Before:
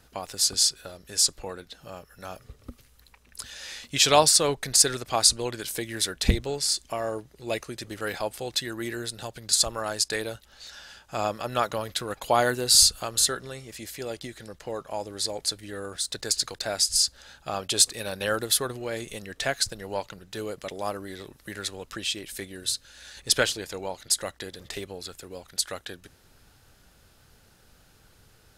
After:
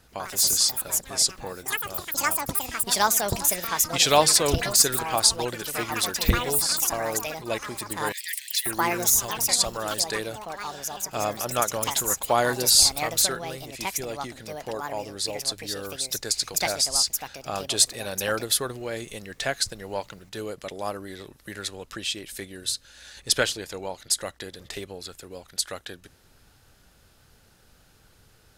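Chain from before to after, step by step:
delay with pitch and tempo change per echo 89 ms, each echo +6 semitones, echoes 3
0:08.12–0:08.66: Butterworth high-pass 1,800 Hz 96 dB per octave

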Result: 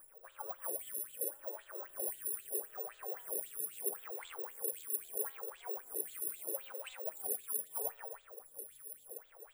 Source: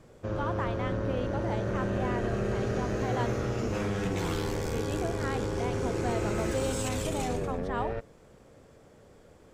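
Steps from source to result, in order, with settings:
low-shelf EQ 130 Hz −5.5 dB
reverb whose tail is shaped and stops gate 350 ms falling, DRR 10 dB
reversed playback
downward compressor 5 to 1, threshold −44 dBFS, peak gain reduction 16 dB
reversed playback
LFO wah 3.8 Hz 400–3,700 Hz, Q 7.1
background noise brown −80 dBFS
bad sample-rate conversion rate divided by 4×, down filtered, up zero stuff
bass and treble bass −8 dB, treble 0 dB
phaser with staggered stages 0.77 Hz
level +12 dB

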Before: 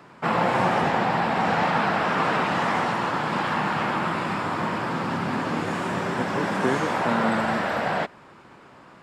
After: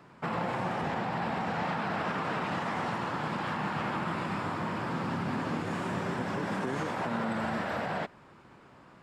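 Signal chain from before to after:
brickwall limiter −17 dBFS, peak gain reduction 8 dB
low-shelf EQ 180 Hz +7 dB
level −7.5 dB

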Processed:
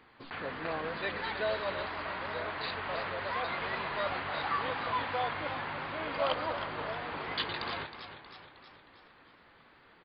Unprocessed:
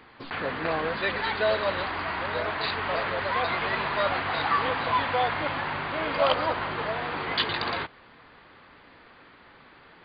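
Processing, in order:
downsampling to 11,025 Hz
feedback echo with a swinging delay time 314 ms, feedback 55%, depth 82 cents, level −11 dB
level −8 dB

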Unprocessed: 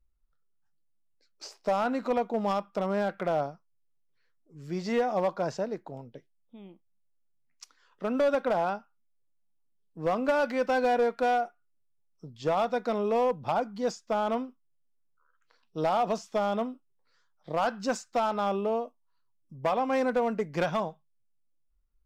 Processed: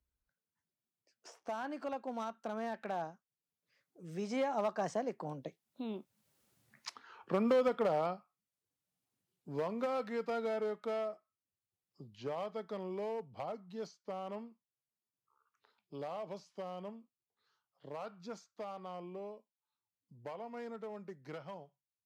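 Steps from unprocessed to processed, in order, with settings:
source passing by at 0:06.36, 39 m/s, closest 11 metres
high-pass filter 63 Hz
multiband upward and downward compressor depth 40%
level +12.5 dB

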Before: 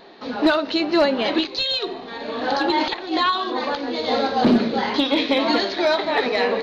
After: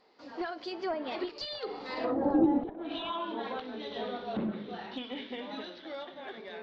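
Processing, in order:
source passing by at 0:02.33, 37 m/s, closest 5.9 metres
healed spectral selection 0:02.91–0:03.12, 210–2,300 Hz both
in parallel at −4 dB: soft clipping −21.5 dBFS, distortion −11 dB
on the sum: treble cut that deepens with the level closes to 370 Hz, closed at −24 dBFS

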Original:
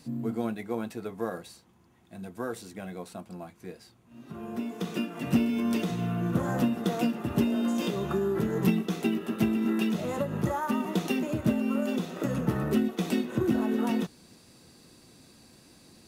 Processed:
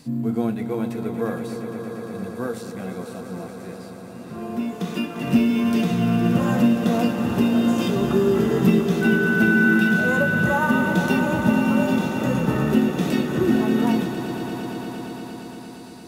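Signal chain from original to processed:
0:09.01–0:09.72: steady tone 1,500 Hz −31 dBFS
harmonic and percussive parts rebalanced harmonic +8 dB
echo that builds up and dies away 116 ms, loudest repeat 5, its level −12 dB

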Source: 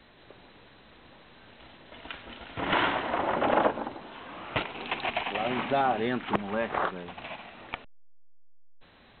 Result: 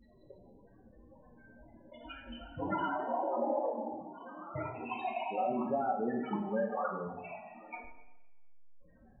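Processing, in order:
spectral peaks only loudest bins 8
downward compressor, threshold −31 dBFS, peak gain reduction 9 dB
coupled-rooms reverb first 0.91 s, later 2.4 s, from −28 dB, DRR −0.5 dB
level −1.5 dB

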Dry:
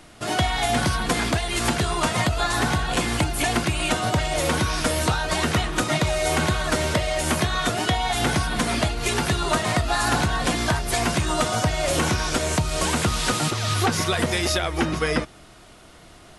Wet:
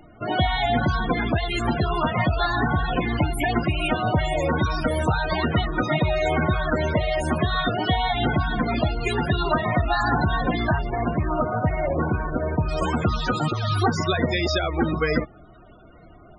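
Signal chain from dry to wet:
0:10.88–0:12.69: variable-slope delta modulation 16 kbit/s
spectral peaks only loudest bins 32
level +1.5 dB

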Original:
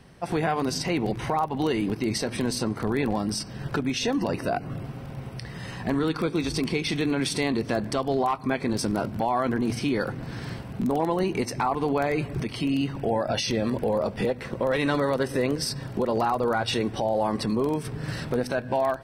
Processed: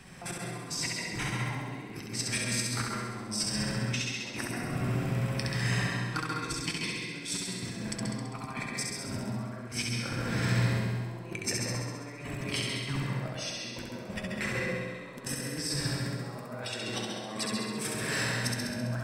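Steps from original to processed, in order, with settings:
0:16.19–0:18.33: high-pass filter 330 Hz 6 dB per octave
compressor whose output falls as the input rises −33 dBFS, ratio −0.5
flanger 0.14 Hz, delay 5.3 ms, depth 4 ms, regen +68%
flutter between parallel walls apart 11.4 metres, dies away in 1.3 s
convolution reverb RT60 0.45 s, pre-delay 133 ms, DRR 3 dB
level +2 dB

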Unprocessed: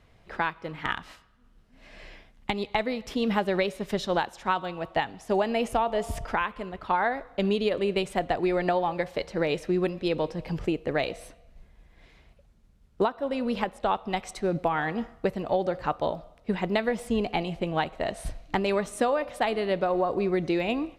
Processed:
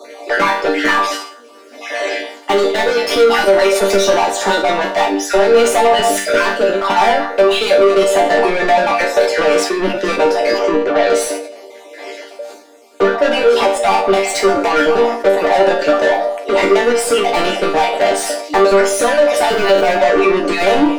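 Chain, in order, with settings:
time-frequency cells dropped at random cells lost 29%
Butterworth high-pass 280 Hz 72 dB per octave
flat-topped bell 1,900 Hz −9.5 dB 2.4 octaves
downward compressor, threshold −30 dBFS, peak gain reduction 9.5 dB
mid-hump overdrive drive 30 dB, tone 2,800 Hz, clips at −19.5 dBFS
0:10.57–0:11.10: high-frequency loss of the air 140 metres
0:19.46–0:19.94: surface crackle 190 per second −39 dBFS
resonators tuned to a chord G3 minor, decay 0.38 s
boost into a limiter +35.5 dB
level that may fall only so fast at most 85 dB per second
level −2 dB

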